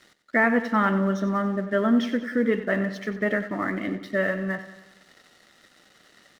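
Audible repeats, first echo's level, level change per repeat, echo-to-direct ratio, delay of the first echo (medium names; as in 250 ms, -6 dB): 5, -13.0 dB, -5.0 dB, -11.5 dB, 93 ms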